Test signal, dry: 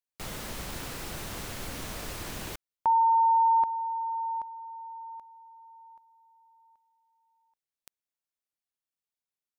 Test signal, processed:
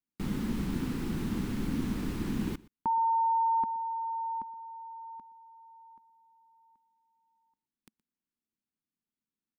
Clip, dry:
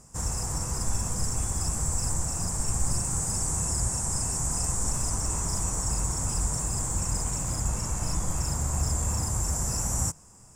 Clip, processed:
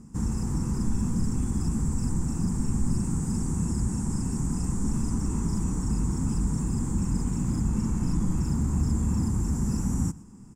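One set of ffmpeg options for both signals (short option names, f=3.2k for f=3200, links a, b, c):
-filter_complex "[0:a]asplit=2[a][b];[b]alimiter=level_in=1dB:limit=-24dB:level=0:latency=1,volume=-1dB,volume=-1dB[c];[a][c]amix=inputs=2:normalize=0,firequalizer=gain_entry='entry(110,0);entry(220,13);entry(610,-16);entry(860,-7);entry(6200,-14)':delay=0.05:min_phase=1,aecho=1:1:120:0.0794,volume=-1.5dB"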